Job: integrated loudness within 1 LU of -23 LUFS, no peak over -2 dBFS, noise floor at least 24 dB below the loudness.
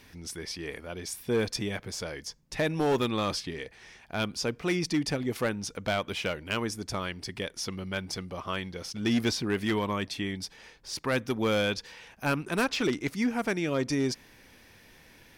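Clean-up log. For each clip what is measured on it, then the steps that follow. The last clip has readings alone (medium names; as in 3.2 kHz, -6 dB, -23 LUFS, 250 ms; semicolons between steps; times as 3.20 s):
clipped samples 0.7%; clipping level -20.5 dBFS; loudness -31.0 LUFS; peak level -20.5 dBFS; loudness target -23.0 LUFS
-> clip repair -20.5 dBFS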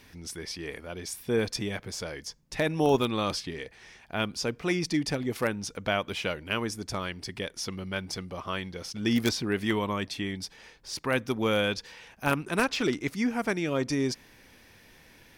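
clipped samples 0.0%; loudness -30.5 LUFS; peak level -11.5 dBFS; loudness target -23.0 LUFS
-> trim +7.5 dB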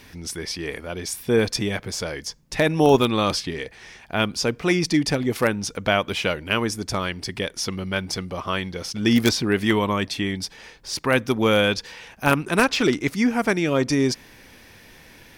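loudness -23.0 LUFS; peak level -4.0 dBFS; noise floor -49 dBFS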